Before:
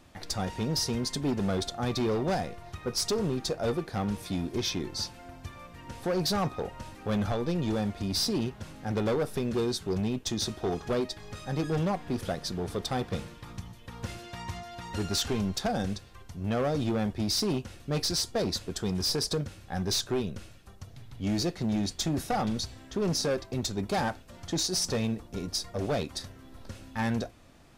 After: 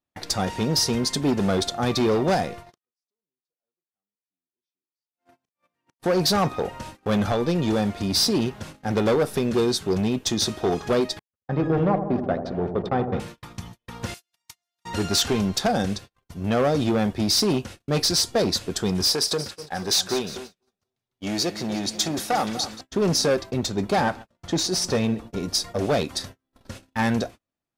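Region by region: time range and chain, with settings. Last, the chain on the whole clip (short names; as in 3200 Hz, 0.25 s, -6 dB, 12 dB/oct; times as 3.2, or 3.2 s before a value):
2.7–6 HPF 180 Hz + flipped gate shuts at -35 dBFS, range -34 dB + doubler 37 ms -13 dB
11.19–13.2 gate -36 dBFS, range -46 dB + LPF 1700 Hz + dark delay 80 ms, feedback 70%, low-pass 880 Hz, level -7.5 dB
14.14–14.85 pre-emphasis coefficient 0.97 + transient shaper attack +11 dB, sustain +7 dB
19.08–22.81 low shelf 260 Hz -11 dB + split-band echo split 1300 Hz, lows 0.245 s, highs 0.178 s, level -12.5 dB
23.5–25.43 high shelf 4100 Hz -6.5 dB + echo 0.135 s -21.5 dB
whole clip: gate -43 dBFS, range -39 dB; low shelf 84 Hz -10.5 dB; gain +8 dB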